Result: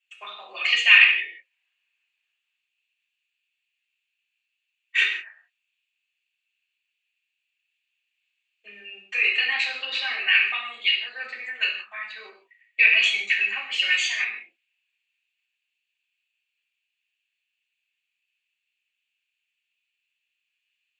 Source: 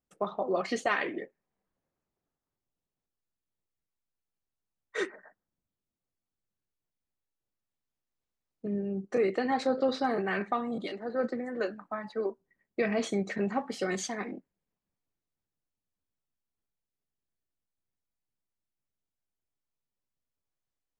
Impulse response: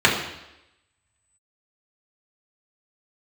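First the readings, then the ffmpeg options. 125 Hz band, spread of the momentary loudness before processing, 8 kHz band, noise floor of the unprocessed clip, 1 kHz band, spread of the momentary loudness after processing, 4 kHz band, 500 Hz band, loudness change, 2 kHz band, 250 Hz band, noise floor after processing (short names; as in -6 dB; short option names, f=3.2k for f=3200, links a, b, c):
under -30 dB, 10 LU, +4.5 dB, under -85 dBFS, -5.5 dB, 20 LU, +21.5 dB, -17.5 dB, +12.5 dB, +18.0 dB, under -25 dB, -81 dBFS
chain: -filter_complex "[0:a]highpass=f=2.6k:t=q:w=10[a];[1:a]atrim=start_sample=2205,afade=t=out:st=0.23:d=0.01,atrim=end_sample=10584[b];[a][b]afir=irnorm=-1:irlink=0,volume=-10dB"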